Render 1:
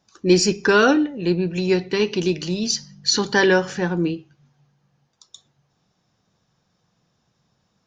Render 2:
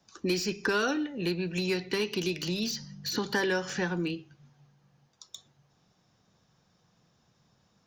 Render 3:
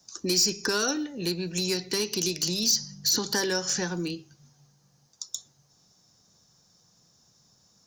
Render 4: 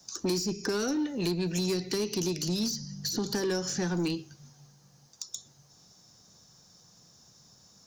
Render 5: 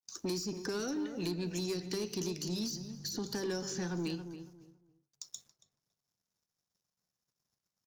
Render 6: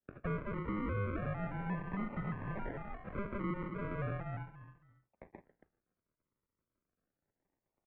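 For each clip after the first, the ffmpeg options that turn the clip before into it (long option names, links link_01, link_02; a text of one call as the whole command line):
ffmpeg -i in.wav -filter_complex "[0:a]acrossover=split=1300|4800[link_01][link_02][link_03];[link_01]acompressor=threshold=-30dB:ratio=4[link_04];[link_02]acompressor=threshold=-33dB:ratio=4[link_05];[link_03]acompressor=threshold=-41dB:ratio=4[link_06];[link_04][link_05][link_06]amix=inputs=3:normalize=0,acrossover=split=170|630|1900[link_07][link_08][link_09][link_10];[link_10]asoftclip=type=hard:threshold=-31dB[link_11];[link_07][link_08][link_09][link_11]amix=inputs=4:normalize=0" out.wav
ffmpeg -i in.wav -af "highshelf=frequency=4000:width_type=q:width=1.5:gain=12" out.wav
ffmpeg -i in.wav -filter_complex "[0:a]acrossover=split=450[link_01][link_02];[link_02]acompressor=threshold=-35dB:ratio=16[link_03];[link_01][link_03]amix=inputs=2:normalize=0,asoftclip=type=tanh:threshold=-27.5dB,volume=4.5dB" out.wav
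ffmpeg -i in.wav -filter_complex "[0:a]aeval=exprs='sgn(val(0))*max(abs(val(0))-0.00141,0)':channel_layout=same,agate=range=-33dB:threshold=-57dB:ratio=3:detection=peak,asplit=2[link_01][link_02];[link_02]adelay=278,lowpass=frequency=1300:poles=1,volume=-9dB,asplit=2[link_03][link_04];[link_04]adelay=278,lowpass=frequency=1300:poles=1,volume=0.25,asplit=2[link_05][link_06];[link_06]adelay=278,lowpass=frequency=1300:poles=1,volume=0.25[link_07];[link_01][link_03][link_05][link_07]amix=inputs=4:normalize=0,volume=-6.5dB" out.wav
ffmpeg -i in.wav -af "alimiter=level_in=11.5dB:limit=-24dB:level=0:latency=1:release=15,volume=-11.5dB,aresample=11025,acrusher=samples=9:mix=1:aa=0.000001:lfo=1:lforange=5.4:lforate=0.35,aresample=44100,highpass=frequency=240:width_type=q:width=0.5412,highpass=frequency=240:width_type=q:width=1.307,lowpass=frequency=2300:width_type=q:width=0.5176,lowpass=frequency=2300:width_type=q:width=0.7071,lowpass=frequency=2300:width_type=q:width=1.932,afreqshift=-200,volume=6dB" out.wav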